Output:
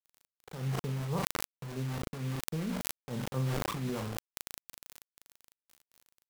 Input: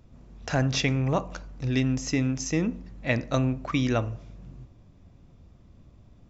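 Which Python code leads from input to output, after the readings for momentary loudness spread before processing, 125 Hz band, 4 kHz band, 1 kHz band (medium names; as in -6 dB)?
15 LU, -7.5 dB, -8.5 dB, -6.0 dB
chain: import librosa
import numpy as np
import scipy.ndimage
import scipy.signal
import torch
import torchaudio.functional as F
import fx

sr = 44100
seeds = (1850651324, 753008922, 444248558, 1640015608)

y = scipy.signal.sosfilt(scipy.signal.cheby1(2, 1.0, [120.0, 1100.0], 'bandpass', fs=sr, output='sos'), x)
y = fx.low_shelf(y, sr, hz=480.0, db=8.0)
y = fx.rider(y, sr, range_db=4, speed_s=2.0)
y = fx.fixed_phaser(y, sr, hz=440.0, stages=8)
y = fx.cheby_harmonics(y, sr, harmonics=(2, 7, 8), levels_db=(-16, -31, -45), full_scale_db=-11.0)
y = y * (1.0 - 0.72 / 2.0 + 0.72 / 2.0 * np.cos(2.0 * np.pi * 4.4 * (np.arange(len(y)) / sr)))
y = fx.dmg_crackle(y, sr, seeds[0], per_s=120.0, level_db=-41.0)
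y = fx.quant_dither(y, sr, seeds[1], bits=6, dither='none')
y = fx.doubler(y, sr, ms=37.0, db=-9.0)
y = fx.sustainer(y, sr, db_per_s=20.0)
y = F.gain(torch.from_numpy(y), -9.5).numpy()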